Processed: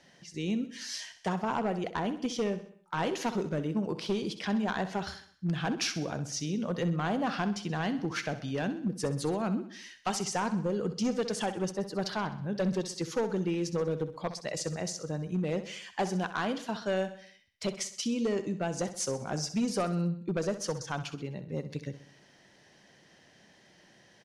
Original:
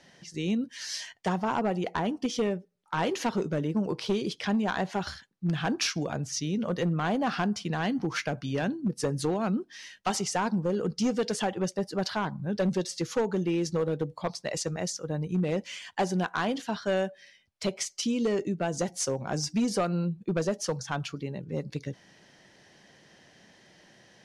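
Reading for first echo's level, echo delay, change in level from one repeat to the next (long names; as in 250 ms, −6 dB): −12.5 dB, 64 ms, −6.0 dB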